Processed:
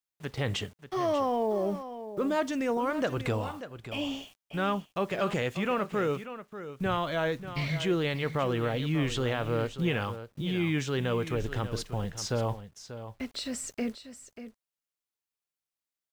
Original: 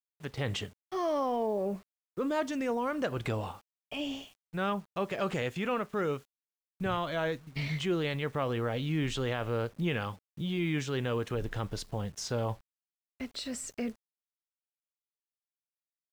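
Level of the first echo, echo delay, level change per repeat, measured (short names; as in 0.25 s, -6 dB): -12.0 dB, 0.588 s, no steady repeat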